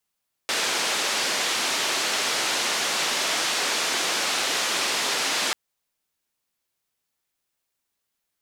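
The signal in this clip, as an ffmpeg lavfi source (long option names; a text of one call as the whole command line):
ffmpeg -f lavfi -i "anoisesrc=color=white:duration=5.04:sample_rate=44100:seed=1,highpass=frequency=300,lowpass=frequency=5600,volume=-14.3dB" out.wav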